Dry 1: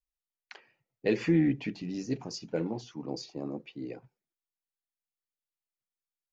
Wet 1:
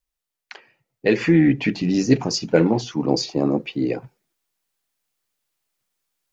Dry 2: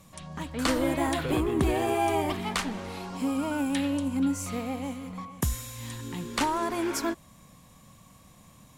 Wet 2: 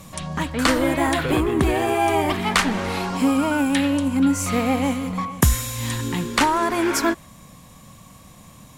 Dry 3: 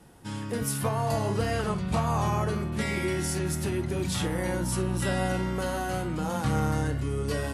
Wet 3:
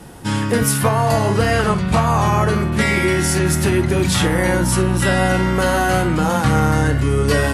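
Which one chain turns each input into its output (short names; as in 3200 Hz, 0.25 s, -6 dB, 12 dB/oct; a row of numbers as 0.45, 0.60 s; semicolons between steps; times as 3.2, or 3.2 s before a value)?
dynamic EQ 1700 Hz, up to +4 dB, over -47 dBFS, Q 1.1; vocal rider within 4 dB 0.5 s; normalise peaks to -3 dBFS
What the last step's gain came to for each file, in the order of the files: +13.0, +8.5, +11.5 dB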